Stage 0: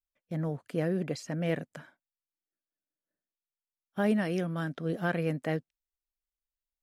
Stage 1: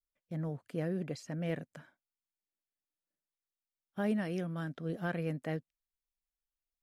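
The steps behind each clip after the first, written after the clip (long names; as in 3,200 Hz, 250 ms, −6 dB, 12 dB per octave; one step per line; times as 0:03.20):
low-shelf EQ 120 Hz +6.5 dB
level −6.5 dB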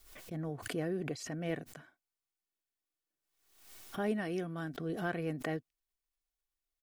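comb filter 2.7 ms, depth 40%
background raised ahead of every attack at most 72 dB per second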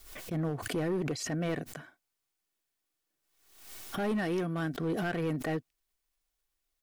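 in parallel at +2.5 dB: brickwall limiter −30.5 dBFS, peak gain reduction 11 dB
on the sum: hard clipping −26.5 dBFS, distortion −14 dB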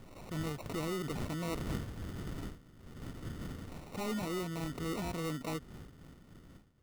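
wind on the microphone 220 Hz −40 dBFS
decimation without filtering 27×
level −5.5 dB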